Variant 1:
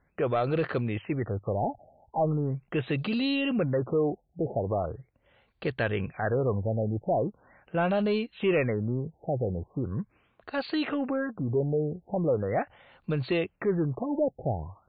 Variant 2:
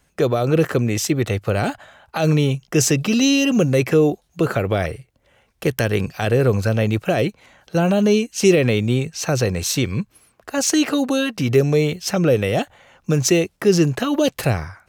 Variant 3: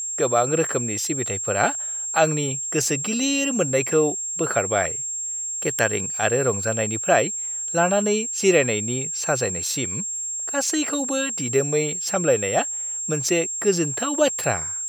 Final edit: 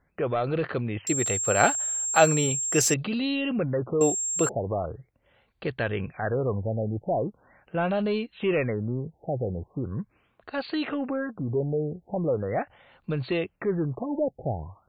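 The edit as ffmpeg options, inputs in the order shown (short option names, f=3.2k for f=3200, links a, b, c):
-filter_complex "[2:a]asplit=2[a][b];[0:a]asplit=3[c][d][e];[c]atrim=end=1.072[f];[a]atrim=start=1.068:end=2.942[g];[d]atrim=start=2.938:end=4.012[h];[b]atrim=start=4.008:end=4.492[i];[e]atrim=start=4.488[j];[f][g]acrossfade=d=0.004:c1=hsin:c2=hsin[k];[k][h]acrossfade=d=0.004:c1=hsin:c2=hsin[l];[l][i]acrossfade=d=0.004:c1=hsin:c2=hsin[m];[m][j]acrossfade=d=0.004:c1=hsin:c2=hsin"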